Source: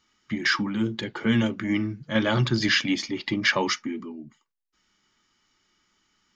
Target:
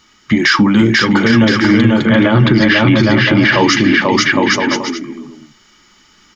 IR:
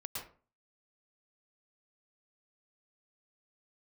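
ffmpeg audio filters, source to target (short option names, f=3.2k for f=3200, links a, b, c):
-filter_complex "[0:a]asettb=1/sr,asplit=3[a][b][c];[a]atrim=end=1.234[d];[b]atrim=start=1.23:end=3.61,asetpts=PTS-STARTPTS,afade=t=in:d=0.004:c=qsin,afade=t=out:st=2.376:d=0.004:c=qsin,lowpass=2.6k[e];[c]atrim=start=3.606[f];[d][e]acrossfade=d=0.004:c1=hsin:c2=qsin[g];[g][f]acrossfade=d=0.004:c1=qsin:c2=hsin,aecho=1:1:490|808.5|1016|1150|1238:0.631|0.398|0.251|0.158|0.1,alimiter=level_in=19dB:limit=-1dB:release=50:level=0:latency=1,volume=-1dB"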